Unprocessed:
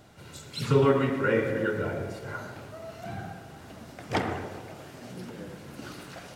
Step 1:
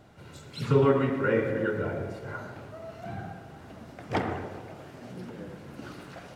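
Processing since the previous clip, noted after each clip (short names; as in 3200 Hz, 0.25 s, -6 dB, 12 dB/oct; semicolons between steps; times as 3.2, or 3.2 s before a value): high shelf 3300 Hz -9 dB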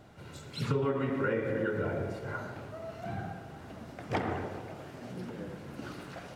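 compressor 5:1, threshold -27 dBFS, peak gain reduction 10 dB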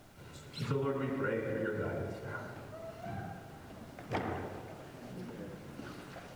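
added noise pink -59 dBFS; gain -4 dB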